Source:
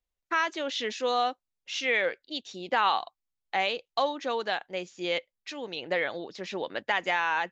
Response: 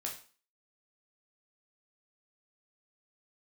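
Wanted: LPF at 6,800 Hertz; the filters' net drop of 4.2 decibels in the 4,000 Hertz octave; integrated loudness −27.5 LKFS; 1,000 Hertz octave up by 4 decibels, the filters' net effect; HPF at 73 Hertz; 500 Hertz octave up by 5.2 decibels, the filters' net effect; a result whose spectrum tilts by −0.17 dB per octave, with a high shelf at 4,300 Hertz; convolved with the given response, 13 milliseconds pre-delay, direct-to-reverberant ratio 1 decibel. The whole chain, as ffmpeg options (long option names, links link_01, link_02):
-filter_complex "[0:a]highpass=73,lowpass=6800,equalizer=frequency=500:width_type=o:gain=5,equalizer=frequency=1000:width_type=o:gain=3.5,equalizer=frequency=4000:width_type=o:gain=-8,highshelf=frequency=4300:gain=4.5,asplit=2[link_01][link_02];[1:a]atrim=start_sample=2205,adelay=13[link_03];[link_02][link_03]afir=irnorm=-1:irlink=0,volume=-1dB[link_04];[link_01][link_04]amix=inputs=2:normalize=0,volume=-3dB"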